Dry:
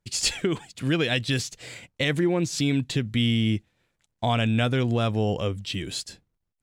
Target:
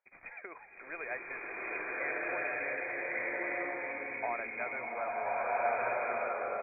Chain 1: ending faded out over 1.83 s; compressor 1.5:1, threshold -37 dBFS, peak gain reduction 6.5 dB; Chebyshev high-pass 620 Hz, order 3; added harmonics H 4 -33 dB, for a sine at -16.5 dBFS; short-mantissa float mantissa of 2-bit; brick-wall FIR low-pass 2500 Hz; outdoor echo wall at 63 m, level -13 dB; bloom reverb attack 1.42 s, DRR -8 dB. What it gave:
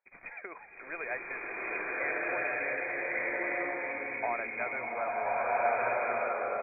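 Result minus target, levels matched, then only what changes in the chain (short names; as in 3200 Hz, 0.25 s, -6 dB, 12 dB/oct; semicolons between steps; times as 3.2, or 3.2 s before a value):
compressor: peak gain reduction -3 dB
change: compressor 1.5:1, threshold -45.5 dBFS, peak gain reduction 9.5 dB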